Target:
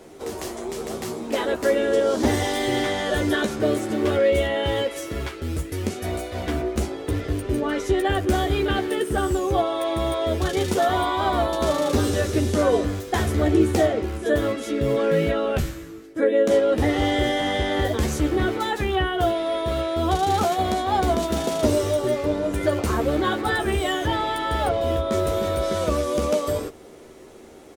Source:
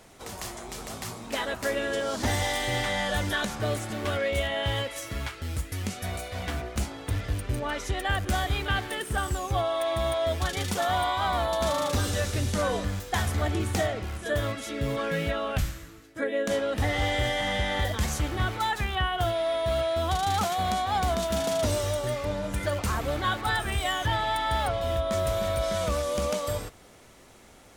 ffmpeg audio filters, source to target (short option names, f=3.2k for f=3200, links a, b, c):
-filter_complex "[0:a]equalizer=f=370:w=1.1:g=14.5,asplit=2[a][b];[b]adelay=13,volume=-6dB[c];[a][c]amix=inputs=2:normalize=0"